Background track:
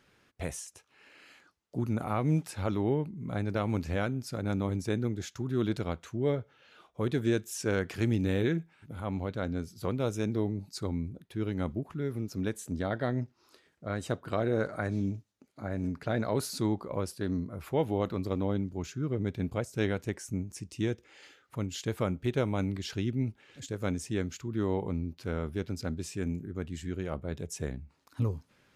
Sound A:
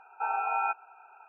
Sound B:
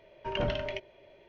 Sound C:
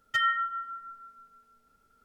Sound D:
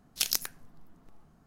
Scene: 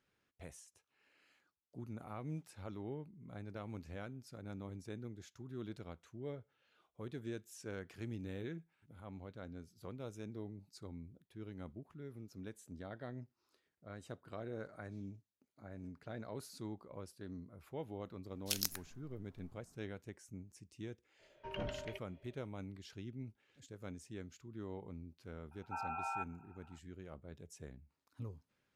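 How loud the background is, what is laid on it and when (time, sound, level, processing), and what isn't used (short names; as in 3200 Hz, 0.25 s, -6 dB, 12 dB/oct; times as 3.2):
background track -16 dB
18.3 add D -8.5 dB
21.19 add B -11.5 dB
25.51 add A -11 dB + HPF 590 Hz
not used: C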